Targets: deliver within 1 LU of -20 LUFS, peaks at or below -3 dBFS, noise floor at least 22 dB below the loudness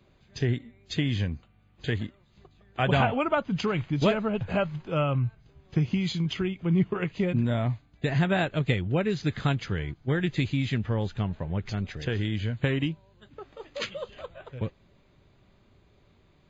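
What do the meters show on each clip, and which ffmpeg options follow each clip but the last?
loudness -28.5 LUFS; peak level -8.0 dBFS; loudness target -20.0 LUFS
-> -af "volume=2.66,alimiter=limit=0.708:level=0:latency=1"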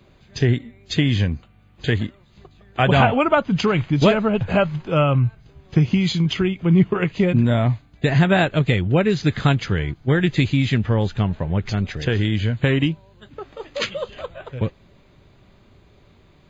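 loudness -20.0 LUFS; peak level -3.0 dBFS; noise floor -53 dBFS

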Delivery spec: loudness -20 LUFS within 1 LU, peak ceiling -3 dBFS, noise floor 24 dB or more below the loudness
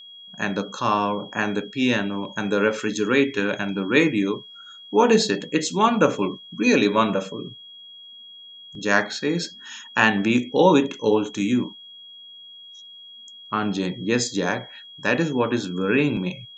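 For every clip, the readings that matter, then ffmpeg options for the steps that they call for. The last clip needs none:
steady tone 3.3 kHz; tone level -41 dBFS; loudness -22.0 LUFS; peak level -1.5 dBFS; loudness target -20.0 LUFS
-> -af "bandreject=f=3300:w=30"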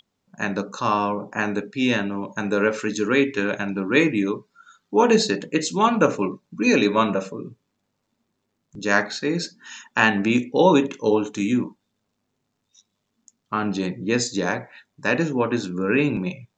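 steady tone not found; loudness -22.0 LUFS; peak level -1.5 dBFS; loudness target -20.0 LUFS
-> -af "volume=1.26,alimiter=limit=0.708:level=0:latency=1"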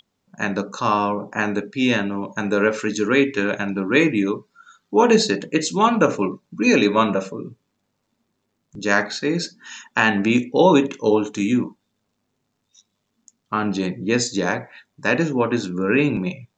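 loudness -20.5 LUFS; peak level -3.0 dBFS; noise floor -74 dBFS

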